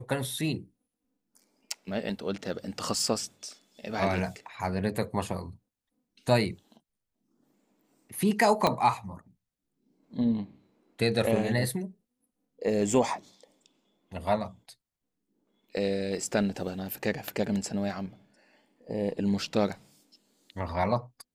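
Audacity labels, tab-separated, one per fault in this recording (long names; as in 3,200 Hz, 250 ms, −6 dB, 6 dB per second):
8.670000	8.670000	click −10 dBFS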